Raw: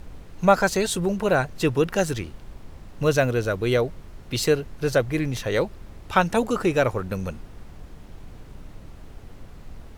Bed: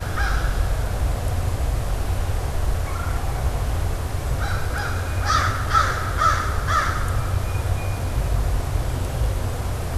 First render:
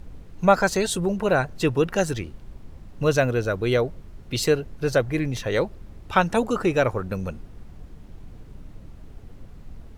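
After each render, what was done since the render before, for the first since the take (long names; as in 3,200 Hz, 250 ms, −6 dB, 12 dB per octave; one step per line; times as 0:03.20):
broadband denoise 6 dB, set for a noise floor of −44 dBFS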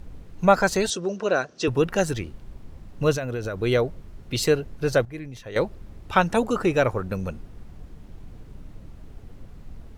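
0:00.90–0:01.68: loudspeaker in its box 290–6,800 Hz, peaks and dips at 870 Hz −9 dB, 2,100 Hz −6 dB, 5,800 Hz +9 dB
0:03.13–0:03.60: downward compressor, threshold −25 dBFS
0:05.05–0:05.56: clip gain −11 dB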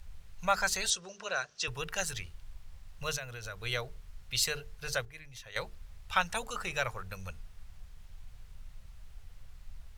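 guitar amp tone stack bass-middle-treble 10-0-10
mains-hum notches 50/100/150/200/250/300/350/400/450 Hz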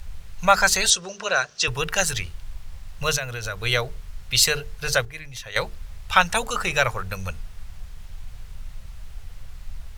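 level +12 dB
brickwall limiter −2 dBFS, peak gain reduction 1 dB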